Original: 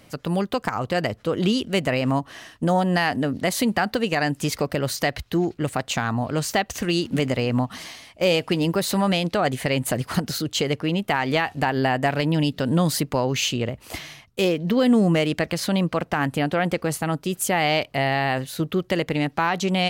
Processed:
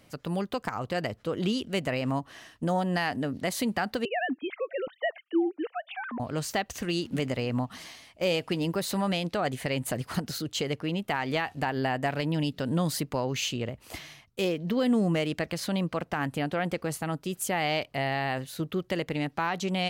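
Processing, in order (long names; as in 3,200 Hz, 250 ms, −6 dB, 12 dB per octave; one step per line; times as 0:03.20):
0:04.05–0:06.20: three sine waves on the formant tracks
level −7 dB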